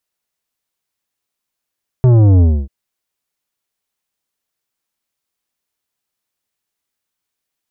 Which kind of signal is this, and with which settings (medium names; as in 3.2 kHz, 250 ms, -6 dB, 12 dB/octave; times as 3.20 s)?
sub drop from 130 Hz, over 0.64 s, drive 11 dB, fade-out 0.27 s, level -7 dB